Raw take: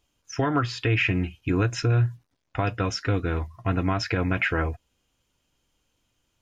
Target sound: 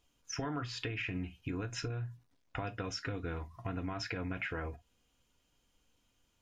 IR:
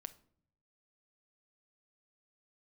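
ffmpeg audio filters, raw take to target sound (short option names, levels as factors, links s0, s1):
-filter_complex "[0:a]alimiter=limit=0.141:level=0:latency=1,acompressor=threshold=0.0224:ratio=5[s0];[1:a]atrim=start_sample=2205,atrim=end_sample=4410,asetrate=66150,aresample=44100[s1];[s0][s1]afir=irnorm=-1:irlink=0,volume=2"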